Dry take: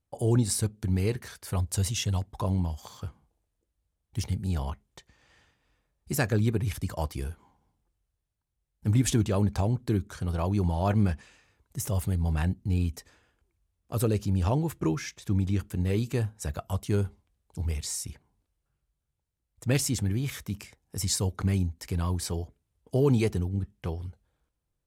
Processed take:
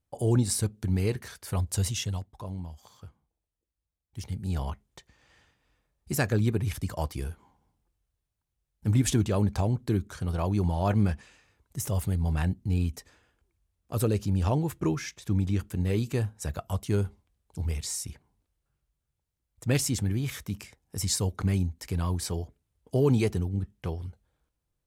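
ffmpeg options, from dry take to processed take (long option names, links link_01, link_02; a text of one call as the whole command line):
ffmpeg -i in.wav -filter_complex "[0:a]asplit=3[link_01][link_02][link_03];[link_01]atrim=end=2.34,asetpts=PTS-STARTPTS,afade=type=out:start_time=1.87:duration=0.47:silence=0.334965[link_04];[link_02]atrim=start=2.34:end=4.13,asetpts=PTS-STARTPTS,volume=-9.5dB[link_05];[link_03]atrim=start=4.13,asetpts=PTS-STARTPTS,afade=type=in:duration=0.47:silence=0.334965[link_06];[link_04][link_05][link_06]concat=n=3:v=0:a=1" out.wav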